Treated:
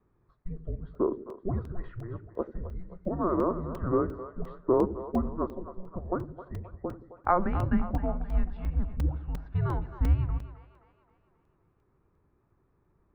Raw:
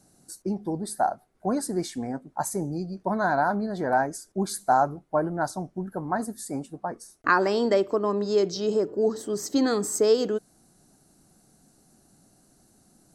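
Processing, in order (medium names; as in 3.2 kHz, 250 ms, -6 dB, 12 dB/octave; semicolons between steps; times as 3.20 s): mistuned SSB -370 Hz 260–2400 Hz; two-band feedback delay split 430 Hz, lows 85 ms, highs 263 ms, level -12 dB; crackling interface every 0.35 s, samples 128, zero, from 0.95 s; trim -3 dB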